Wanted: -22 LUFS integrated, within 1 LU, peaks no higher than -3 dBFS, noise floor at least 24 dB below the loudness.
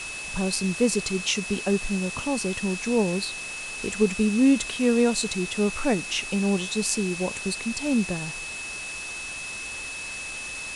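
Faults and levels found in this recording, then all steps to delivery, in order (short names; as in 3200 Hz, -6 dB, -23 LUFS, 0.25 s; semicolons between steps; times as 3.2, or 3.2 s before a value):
steady tone 2600 Hz; tone level -34 dBFS; noise floor -35 dBFS; noise floor target -50 dBFS; loudness -26.0 LUFS; peak -7.5 dBFS; loudness target -22.0 LUFS
-> notch 2600 Hz, Q 30; denoiser 15 dB, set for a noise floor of -35 dBFS; gain +4 dB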